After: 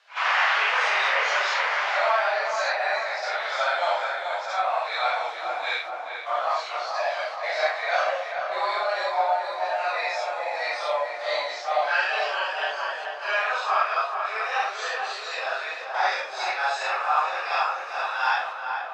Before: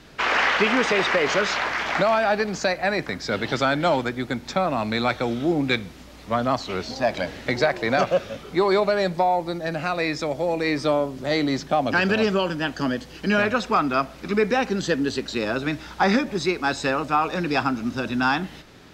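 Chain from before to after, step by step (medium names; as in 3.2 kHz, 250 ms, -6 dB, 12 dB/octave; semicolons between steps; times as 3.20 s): phase randomisation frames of 200 ms; gate -32 dBFS, range -7 dB; steep high-pass 640 Hz 36 dB/octave; distance through air 67 m; tape echo 433 ms, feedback 71%, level -4.5 dB, low-pass 2 kHz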